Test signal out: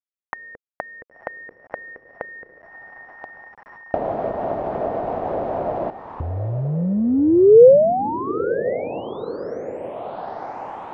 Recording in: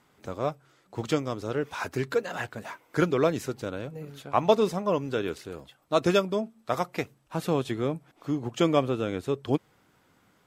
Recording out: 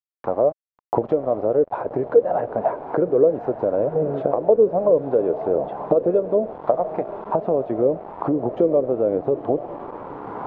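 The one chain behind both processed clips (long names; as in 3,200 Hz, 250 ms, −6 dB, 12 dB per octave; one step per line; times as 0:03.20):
camcorder AGC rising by 32 dB per second
high-pass filter 310 Hz 6 dB per octave
in parallel at +3 dB: downward compressor 10 to 1, threshold −31 dBFS
on the sum: leveller curve on the samples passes 1
on a send: feedback delay with all-pass diffusion 977 ms, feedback 52%, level −12.5 dB
on the sum: bit reduction 5 bits
high-frequency loss of the air 78 metres
envelope-controlled low-pass 490–1,100 Hz down, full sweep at −12.5 dBFS
level −6.5 dB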